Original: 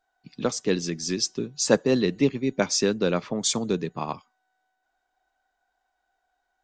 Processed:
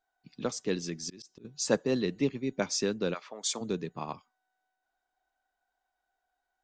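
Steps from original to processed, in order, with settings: 0.95–1.45 auto swell 0.3 s; 3.13–3.6 HPF 1100 Hz -> 330 Hz 12 dB/oct; gain -7 dB

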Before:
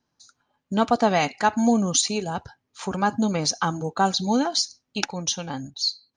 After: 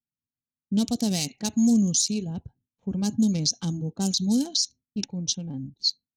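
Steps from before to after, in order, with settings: Wiener smoothing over 9 samples; gate with hold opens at -45 dBFS; low-pass opened by the level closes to 350 Hz, open at -17.5 dBFS; EQ curve 220 Hz 0 dB, 1300 Hz -29 dB, 5300 Hz +14 dB; limiter -15 dBFS, peak gain reduction 19.5 dB; gain +2 dB

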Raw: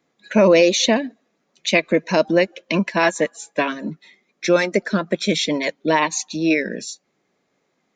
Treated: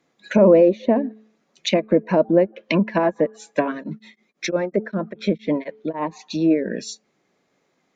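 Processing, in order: treble ducked by the level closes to 760 Hz, closed at -15.5 dBFS; de-hum 217.4 Hz, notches 2; 3.71–6.06 beating tremolo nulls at 6.9 Hz -> 3.2 Hz; gain +1.5 dB

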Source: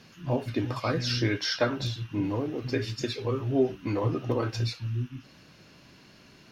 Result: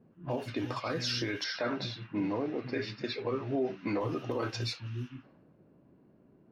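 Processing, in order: low-pass opened by the level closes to 380 Hz, open at -25 dBFS; low shelf 160 Hz -12 dB; limiter -23.5 dBFS, peak gain reduction 10.5 dB; 1.44–4.01 speaker cabinet 110–5000 Hz, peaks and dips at 200 Hz +6 dB, 670 Hz +3 dB, 2100 Hz +4 dB, 3100 Hz -7 dB

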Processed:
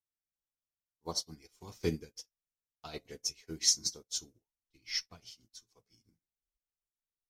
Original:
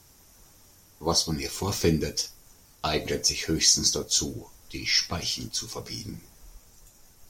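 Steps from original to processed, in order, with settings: upward expander 2.5:1, over -46 dBFS; gain -5 dB

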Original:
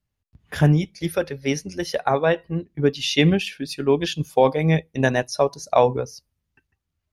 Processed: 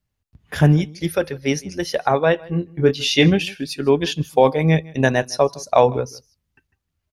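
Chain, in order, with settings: 2.43–3.28 doubler 23 ms -6 dB; echo 0.157 s -23 dB; gain +2.5 dB

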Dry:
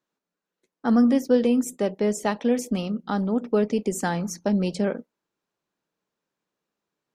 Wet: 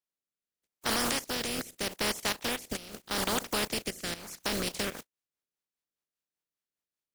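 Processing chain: spectral contrast lowered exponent 0.23; level quantiser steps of 13 dB; rotary speaker horn 0.8 Hz, later 5 Hz, at 4.08; gain -2 dB

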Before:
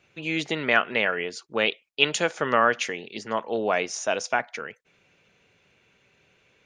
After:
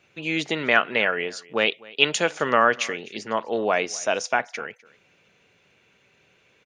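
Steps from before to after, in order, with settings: low shelf 82 Hz -6.5 dB; echo 0.252 s -22.5 dB; gain +2 dB

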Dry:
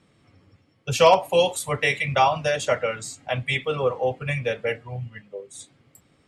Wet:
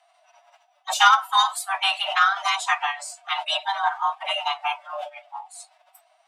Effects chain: frequency shift +450 Hz; formant-preserving pitch shift +4.5 st

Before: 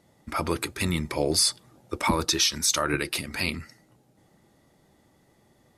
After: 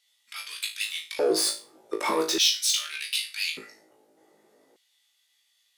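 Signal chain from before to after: overloaded stage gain 20.5 dB; flutter echo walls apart 3.2 m, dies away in 0.32 s; LFO high-pass square 0.42 Hz 420–3100 Hz; gain -3 dB

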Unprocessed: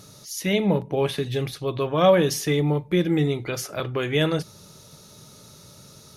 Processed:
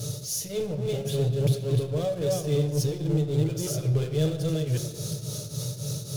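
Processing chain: reverse delay 0.367 s, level -5 dB; HPF 84 Hz 6 dB/oct; reverse; compressor, threshold -29 dBFS, peak gain reduction 16 dB; reverse; tremolo triangle 3.6 Hz, depth 100%; power-law curve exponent 0.5; graphic EQ 125/250/500/1000/2000/8000 Hz +12/-9/+7/-11/-9/+3 dB; on a send: reverb RT60 1.9 s, pre-delay 7 ms, DRR 6 dB; on the sum: gain -1.5 dB

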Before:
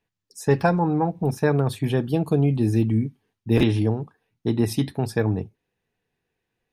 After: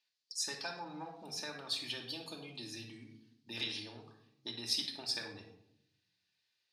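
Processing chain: compressor, threshold -24 dBFS, peak gain reduction 11 dB; band-pass 4500 Hz, Q 3.4; shoebox room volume 1900 m³, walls furnished, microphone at 2.6 m; gain +10.5 dB

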